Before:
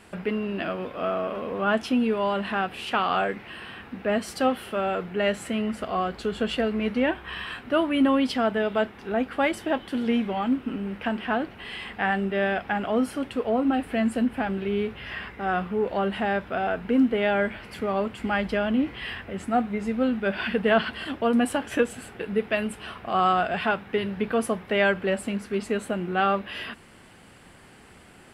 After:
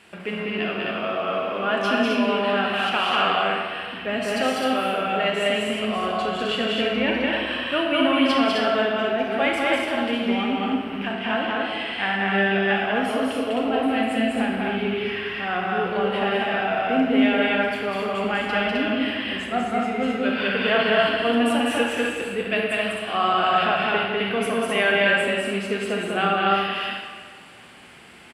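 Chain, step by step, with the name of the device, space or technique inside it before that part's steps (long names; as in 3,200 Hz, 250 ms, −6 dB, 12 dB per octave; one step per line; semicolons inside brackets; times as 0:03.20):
stadium PA (high-pass filter 160 Hz 6 dB per octave; parametric band 2,800 Hz +7.5 dB 1.2 octaves; loudspeakers that aren't time-aligned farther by 68 metres −2 dB, 89 metres −3 dB; convolution reverb RT60 1.7 s, pre-delay 27 ms, DRR 1 dB)
0:11.12–0:12.74: low-pass filter 10,000 Hz 12 dB per octave
level −3 dB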